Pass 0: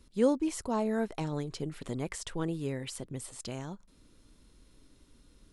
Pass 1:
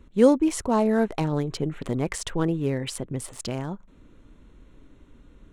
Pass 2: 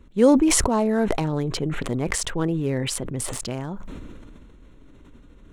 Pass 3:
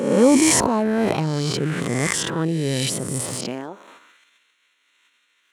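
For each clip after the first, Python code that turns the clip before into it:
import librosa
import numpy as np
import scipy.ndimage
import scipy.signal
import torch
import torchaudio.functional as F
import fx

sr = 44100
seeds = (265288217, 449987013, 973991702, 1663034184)

y1 = fx.wiener(x, sr, points=9)
y1 = F.gain(torch.from_numpy(y1), 9.0).numpy()
y2 = fx.sustainer(y1, sr, db_per_s=21.0)
y3 = fx.spec_swells(y2, sr, rise_s=0.99)
y3 = fx.filter_sweep_highpass(y3, sr, from_hz=130.0, to_hz=2200.0, start_s=3.36, end_s=4.21, q=1.4)
y3 = F.gain(torch.from_numpy(y3), -1.0).numpy()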